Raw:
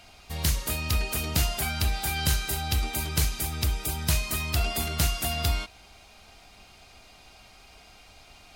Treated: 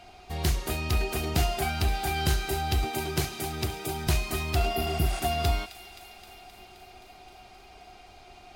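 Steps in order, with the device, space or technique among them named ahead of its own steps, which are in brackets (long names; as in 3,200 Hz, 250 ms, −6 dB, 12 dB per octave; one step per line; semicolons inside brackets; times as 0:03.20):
inside a helmet (high-shelf EQ 4,900 Hz −8 dB; hollow resonant body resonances 370/730 Hz, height 14 dB, ringing for 80 ms)
0:02.84–0:04.07: high-pass filter 86 Hz 24 dB per octave
0:04.77–0:05.17: healed spectral selection 480–10,000 Hz both
delay with a high-pass on its return 262 ms, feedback 73%, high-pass 1,600 Hz, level −14.5 dB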